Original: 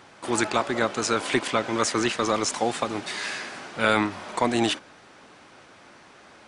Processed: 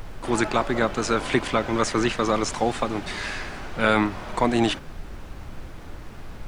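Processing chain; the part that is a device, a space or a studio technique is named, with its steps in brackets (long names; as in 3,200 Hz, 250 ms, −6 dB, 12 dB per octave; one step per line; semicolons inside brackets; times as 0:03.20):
car interior (parametric band 150 Hz +5.5 dB 0.91 octaves; high-shelf EQ 4,100 Hz −7 dB; brown noise bed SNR 10 dB)
level +1.5 dB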